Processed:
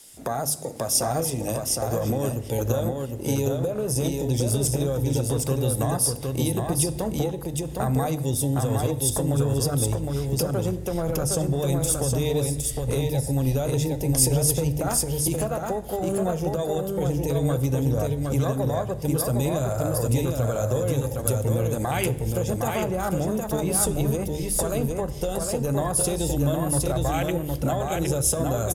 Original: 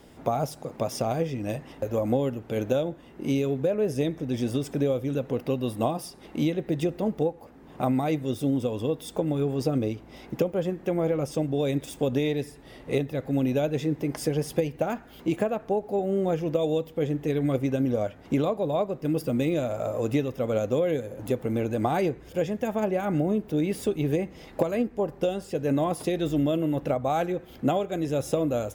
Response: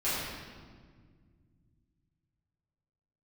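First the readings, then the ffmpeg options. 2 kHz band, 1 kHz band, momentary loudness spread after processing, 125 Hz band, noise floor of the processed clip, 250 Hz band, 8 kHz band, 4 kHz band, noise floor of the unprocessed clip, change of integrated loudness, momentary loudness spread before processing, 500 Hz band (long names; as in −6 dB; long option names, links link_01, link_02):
+1.5 dB, +2.0 dB, 5 LU, +7.5 dB, −33 dBFS, −0.5 dB, +19.5 dB, +7.0 dB, −49 dBFS, +3.0 dB, 5 LU, 0.0 dB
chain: -filter_complex "[0:a]lowpass=frequency=11000:width=0.5412,lowpass=frequency=11000:width=1.3066,afwtdn=0.0178,aemphasis=mode=production:type=75fm,bandreject=frequency=50:width_type=h:width=6,bandreject=frequency=100:width_type=h:width=6,bandreject=frequency=150:width_type=h:width=6,bandreject=frequency=200:width_type=h:width=6,bandreject=frequency=250:width_type=h:width=6,bandreject=frequency=300:width_type=h:width=6,asubboost=boost=11.5:cutoff=70,alimiter=limit=-22.5dB:level=0:latency=1:release=57,acrossover=split=220[link_01][link_02];[link_02]acompressor=threshold=-32dB:ratio=6[link_03];[link_01][link_03]amix=inputs=2:normalize=0,crystalizer=i=7:c=0,aecho=1:1:762:0.668,asplit=2[link_04][link_05];[1:a]atrim=start_sample=2205,asetrate=74970,aresample=44100[link_06];[link_05][link_06]afir=irnorm=-1:irlink=0,volume=-19.5dB[link_07];[link_04][link_07]amix=inputs=2:normalize=0,volume=5dB"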